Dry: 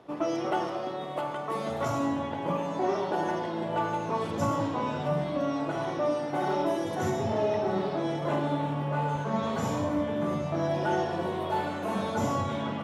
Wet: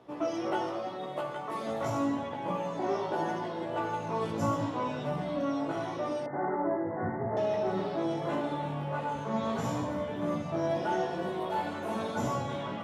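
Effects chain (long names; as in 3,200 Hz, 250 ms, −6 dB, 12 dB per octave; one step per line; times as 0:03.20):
chorus effect 0.8 Hz, delay 15.5 ms, depth 2.8 ms
0:06.26–0:07.37: Chebyshev low-pass filter 2,100 Hz, order 10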